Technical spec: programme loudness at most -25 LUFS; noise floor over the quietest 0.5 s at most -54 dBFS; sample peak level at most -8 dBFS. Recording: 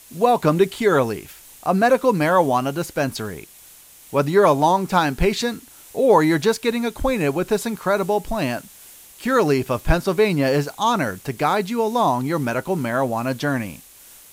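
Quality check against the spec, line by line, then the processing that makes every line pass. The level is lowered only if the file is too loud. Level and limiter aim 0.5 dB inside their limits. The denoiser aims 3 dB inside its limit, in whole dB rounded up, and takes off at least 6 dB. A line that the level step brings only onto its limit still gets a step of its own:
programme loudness -20.0 LUFS: fail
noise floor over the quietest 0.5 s -46 dBFS: fail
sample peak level -4.0 dBFS: fail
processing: denoiser 6 dB, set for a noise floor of -46 dBFS; gain -5.5 dB

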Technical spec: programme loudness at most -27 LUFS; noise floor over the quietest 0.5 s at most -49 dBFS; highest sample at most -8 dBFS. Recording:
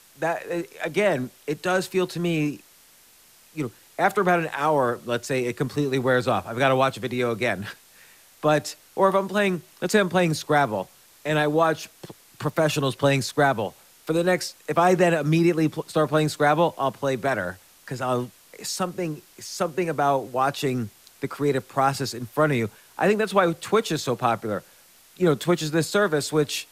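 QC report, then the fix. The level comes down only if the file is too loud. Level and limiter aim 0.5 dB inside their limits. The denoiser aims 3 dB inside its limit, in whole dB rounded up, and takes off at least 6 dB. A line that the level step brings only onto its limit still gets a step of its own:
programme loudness -24.0 LUFS: fail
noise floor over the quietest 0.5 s -54 dBFS: OK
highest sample -5.5 dBFS: fail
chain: gain -3.5 dB

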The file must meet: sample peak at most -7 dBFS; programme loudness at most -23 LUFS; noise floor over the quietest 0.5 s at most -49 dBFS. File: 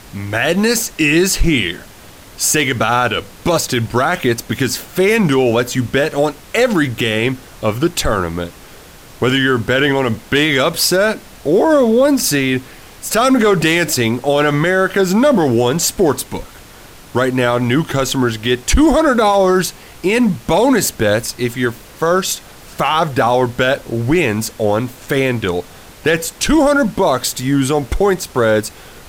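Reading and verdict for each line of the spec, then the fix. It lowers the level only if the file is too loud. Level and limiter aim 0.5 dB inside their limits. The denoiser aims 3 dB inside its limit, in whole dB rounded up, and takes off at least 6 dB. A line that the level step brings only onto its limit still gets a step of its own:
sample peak -4.0 dBFS: fail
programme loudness -15.0 LUFS: fail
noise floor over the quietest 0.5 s -39 dBFS: fail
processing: denoiser 6 dB, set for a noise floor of -39 dBFS; gain -8.5 dB

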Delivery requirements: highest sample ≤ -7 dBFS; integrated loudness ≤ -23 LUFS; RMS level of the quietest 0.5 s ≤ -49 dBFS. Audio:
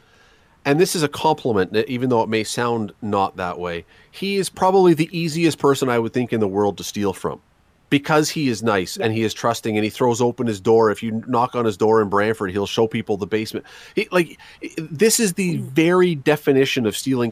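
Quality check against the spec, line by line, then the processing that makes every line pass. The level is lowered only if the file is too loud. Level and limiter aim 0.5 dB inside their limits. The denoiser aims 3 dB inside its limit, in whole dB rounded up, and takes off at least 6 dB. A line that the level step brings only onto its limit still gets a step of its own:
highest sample -5.0 dBFS: fail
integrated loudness -19.5 LUFS: fail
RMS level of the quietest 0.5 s -58 dBFS: OK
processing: gain -4 dB

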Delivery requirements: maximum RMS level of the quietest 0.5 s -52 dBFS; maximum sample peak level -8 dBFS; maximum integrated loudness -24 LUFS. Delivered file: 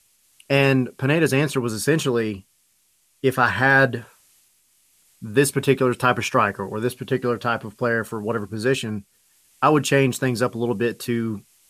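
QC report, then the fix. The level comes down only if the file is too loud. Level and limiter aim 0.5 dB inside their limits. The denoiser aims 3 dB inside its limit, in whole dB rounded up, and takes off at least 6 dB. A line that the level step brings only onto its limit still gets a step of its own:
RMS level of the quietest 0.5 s -64 dBFS: OK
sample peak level -4.5 dBFS: fail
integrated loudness -21.5 LUFS: fail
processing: gain -3 dB; limiter -8.5 dBFS

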